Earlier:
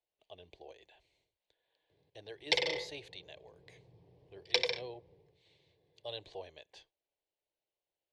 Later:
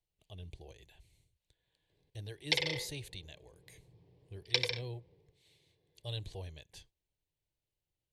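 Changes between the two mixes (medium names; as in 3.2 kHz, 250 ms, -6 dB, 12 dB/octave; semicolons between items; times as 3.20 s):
speech: remove three-band isolator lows -19 dB, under 300 Hz, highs -24 dB, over 5.6 kHz; master: add peaking EQ 650 Hz -6.5 dB 1.3 oct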